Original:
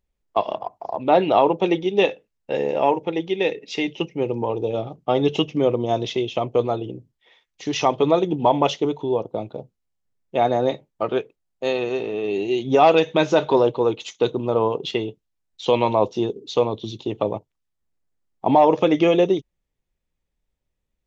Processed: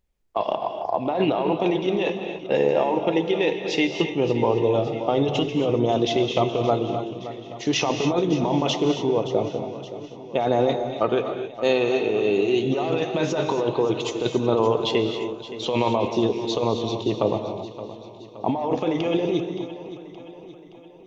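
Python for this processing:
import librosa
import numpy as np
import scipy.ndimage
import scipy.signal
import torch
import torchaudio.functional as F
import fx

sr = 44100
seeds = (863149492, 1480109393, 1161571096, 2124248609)

y = fx.over_compress(x, sr, threshold_db=-21.0, ratio=-1.0)
y = fx.echo_feedback(y, sr, ms=571, feedback_pct=53, wet_db=-14.0)
y = fx.rev_gated(y, sr, seeds[0], gate_ms=300, shape='rising', drr_db=6.5)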